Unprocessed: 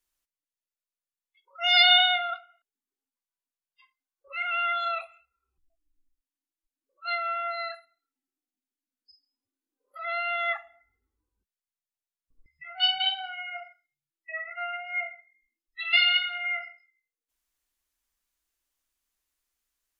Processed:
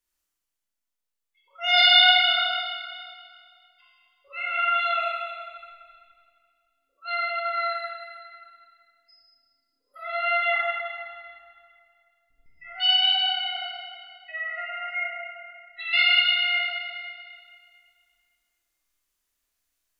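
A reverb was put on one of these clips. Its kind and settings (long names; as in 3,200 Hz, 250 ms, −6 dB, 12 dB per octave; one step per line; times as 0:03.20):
four-comb reverb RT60 2.1 s, combs from 26 ms, DRR −5 dB
level −2.5 dB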